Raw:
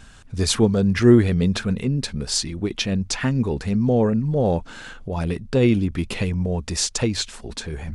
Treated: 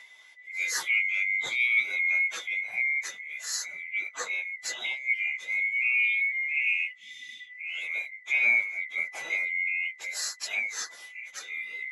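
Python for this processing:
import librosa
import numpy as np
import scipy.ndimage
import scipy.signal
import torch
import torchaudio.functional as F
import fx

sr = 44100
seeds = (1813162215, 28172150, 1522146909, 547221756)

y = fx.band_swap(x, sr, width_hz=2000)
y = fx.spec_repair(y, sr, seeds[0], start_s=4.22, length_s=0.76, low_hz=360.0, high_hz=2100.0, source='after')
y = fx.stretch_vocoder_free(y, sr, factor=1.5)
y = fx.weighting(y, sr, curve='A')
y = y * 10.0 ** (-6.5 / 20.0)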